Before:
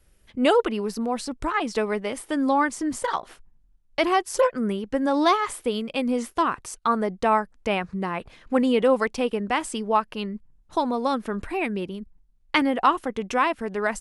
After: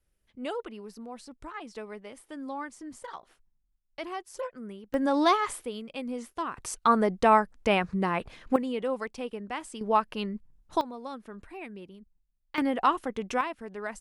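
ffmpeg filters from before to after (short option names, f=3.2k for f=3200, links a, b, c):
-af "asetnsamples=n=441:p=0,asendcmd='4.94 volume volume -3dB;5.65 volume volume -10.5dB;6.57 volume volume 0.5dB;8.56 volume volume -11dB;9.81 volume volume -2.5dB;10.81 volume volume -15dB;12.58 volume volume -4.5dB;13.41 volume volume -11dB',volume=-15.5dB"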